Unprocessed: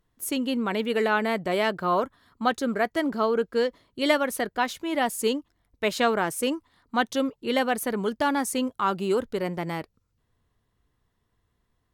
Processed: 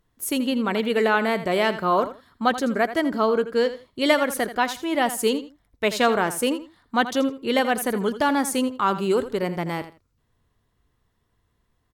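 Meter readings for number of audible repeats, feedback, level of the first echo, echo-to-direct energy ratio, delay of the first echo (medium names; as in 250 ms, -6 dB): 2, 20%, -13.0 dB, -13.0 dB, 82 ms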